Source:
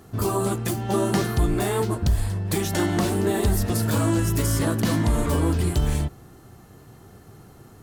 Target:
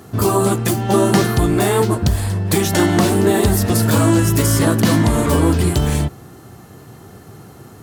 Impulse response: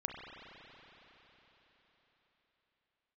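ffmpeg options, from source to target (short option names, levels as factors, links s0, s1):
-af "highpass=82,volume=2.66"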